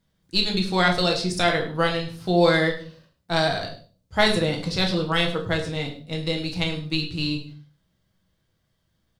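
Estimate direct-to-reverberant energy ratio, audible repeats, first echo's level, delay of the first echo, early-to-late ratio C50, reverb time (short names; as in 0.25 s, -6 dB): 1.0 dB, 1, -15.0 dB, 0.102 s, 9.0 dB, 0.40 s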